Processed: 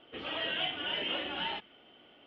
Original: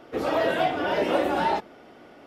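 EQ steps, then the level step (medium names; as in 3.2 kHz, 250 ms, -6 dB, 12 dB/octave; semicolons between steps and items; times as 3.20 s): dynamic bell 580 Hz, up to -6 dB, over -37 dBFS, Q 0.76; dynamic bell 2 kHz, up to +4 dB, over -46 dBFS, Q 1.1; four-pole ladder low-pass 3.2 kHz, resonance 85%; 0.0 dB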